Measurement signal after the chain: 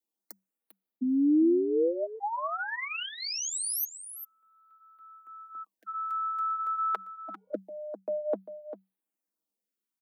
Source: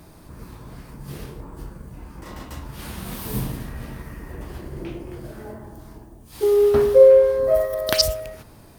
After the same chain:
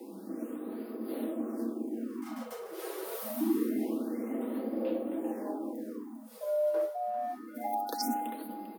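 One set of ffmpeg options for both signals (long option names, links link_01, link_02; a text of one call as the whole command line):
ffmpeg -i in.wav -af "areverse,acompressor=threshold=-25dB:ratio=12,areverse,flanger=delay=1.2:depth=2.7:regen=-56:speed=0.56:shape=sinusoidal,highshelf=frequency=7500:gain=10,afreqshift=190,tiltshelf=frequency=740:gain=8.5,aecho=1:1:6.2:0.46,aecho=1:1:397:0.266,afftfilt=real='re*(1-between(b*sr/1024,230*pow(7200/230,0.5+0.5*sin(2*PI*0.26*pts/sr))/1.41,230*pow(7200/230,0.5+0.5*sin(2*PI*0.26*pts/sr))*1.41))':imag='im*(1-between(b*sr/1024,230*pow(7200/230,0.5+0.5*sin(2*PI*0.26*pts/sr))/1.41,230*pow(7200/230,0.5+0.5*sin(2*PI*0.26*pts/sr))*1.41))':win_size=1024:overlap=0.75" out.wav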